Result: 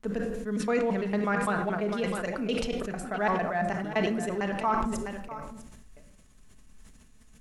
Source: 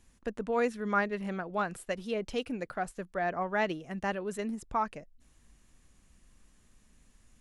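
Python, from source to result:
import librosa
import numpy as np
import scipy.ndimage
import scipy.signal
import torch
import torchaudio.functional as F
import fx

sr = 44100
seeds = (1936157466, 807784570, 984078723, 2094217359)

p1 = fx.block_reorder(x, sr, ms=113.0, group=4)
p2 = p1 + fx.echo_single(p1, sr, ms=653, db=-14.0, dry=0)
p3 = fx.room_shoebox(p2, sr, seeds[0], volume_m3=2300.0, walls='furnished', distance_m=1.5)
p4 = fx.quant_companded(p3, sr, bits=8)
p5 = fx.env_lowpass_down(p4, sr, base_hz=2300.0, full_db=-15.0)
y = fx.sustainer(p5, sr, db_per_s=29.0)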